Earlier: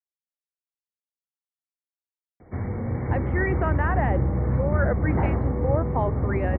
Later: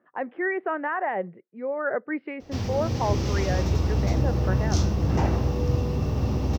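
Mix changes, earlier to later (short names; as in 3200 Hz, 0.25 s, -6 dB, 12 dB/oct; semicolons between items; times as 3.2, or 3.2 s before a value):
speech: entry -2.95 s; background: remove brick-wall FIR low-pass 2300 Hz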